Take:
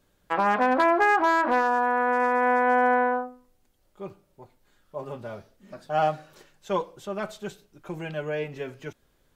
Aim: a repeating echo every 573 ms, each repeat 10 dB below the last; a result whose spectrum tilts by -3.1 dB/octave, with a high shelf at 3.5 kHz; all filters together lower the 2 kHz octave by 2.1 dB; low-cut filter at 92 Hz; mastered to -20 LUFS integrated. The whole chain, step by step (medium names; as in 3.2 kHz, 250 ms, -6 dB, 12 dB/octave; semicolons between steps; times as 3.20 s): high-pass 92 Hz; peaking EQ 2 kHz -5 dB; treble shelf 3.5 kHz +8.5 dB; feedback delay 573 ms, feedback 32%, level -10 dB; trim +4.5 dB